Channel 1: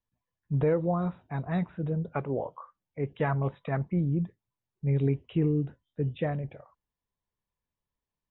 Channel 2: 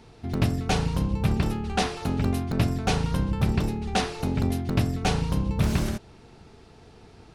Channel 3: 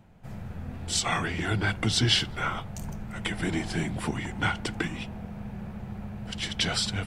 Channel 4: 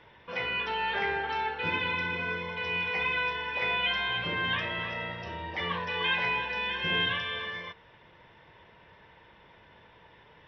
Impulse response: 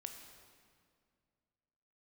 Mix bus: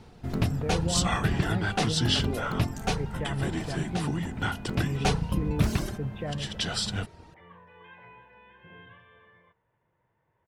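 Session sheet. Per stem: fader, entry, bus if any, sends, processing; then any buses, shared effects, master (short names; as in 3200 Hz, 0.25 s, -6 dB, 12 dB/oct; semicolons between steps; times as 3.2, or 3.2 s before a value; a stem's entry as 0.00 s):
-2.5 dB, 0.00 s, no send, limiter -22 dBFS, peak gain reduction 6 dB
2.89 s -2.5 dB -> 3.3 s -11 dB -> 4.37 s -11 dB -> 4.99 s 0 dB, 0.00 s, no send, reverb removal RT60 1.5 s
+3.0 dB, 0.00 s, no send, notch 2200 Hz, Q 5.7; auto duck -6 dB, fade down 1.80 s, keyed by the first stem
-18.0 dB, 1.80 s, no send, LPF 1500 Hz 12 dB/oct; bell 120 Hz +6 dB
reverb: off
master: dry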